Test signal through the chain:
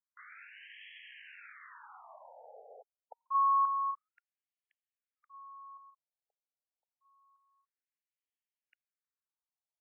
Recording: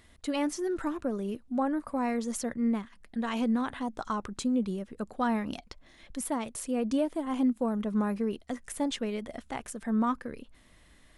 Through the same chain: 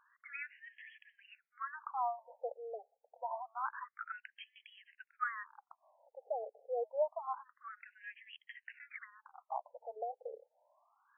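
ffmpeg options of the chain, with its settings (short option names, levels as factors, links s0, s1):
-filter_complex "[0:a]acrossover=split=400[s0][s1];[s0]acompressor=threshold=0.00891:ratio=12[s2];[s2][s1]amix=inputs=2:normalize=0,afftfilt=real='re*between(b*sr/1024,580*pow(2400/580,0.5+0.5*sin(2*PI*0.27*pts/sr))/1.41,580*pow(2400/580,0.5+0.5*sin(2*PI*0.27*pts/sr))*1.41)':imag='im*between(b*sr/1024,580*pow(2400/580,0.5+0.5*sin(2*PI*0.27*pts/sr))/1.41,580*pow(2400/580,0.5+0.5*sin(2*PI*0.27*pts/sr))*1.41)':win_size=1024:overlap=0.75"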